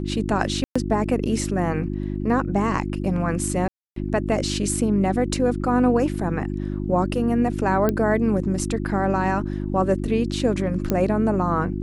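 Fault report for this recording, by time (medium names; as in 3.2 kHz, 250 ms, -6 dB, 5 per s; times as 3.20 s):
hum 50 Hz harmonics 7 -27 dBFS
0.64–0.76 s: dropout 115 ms
3.68–3.96 s: dropout 283 ms
7.89 s: pop -9 dBFS
10.90 s: pop -9 dBFS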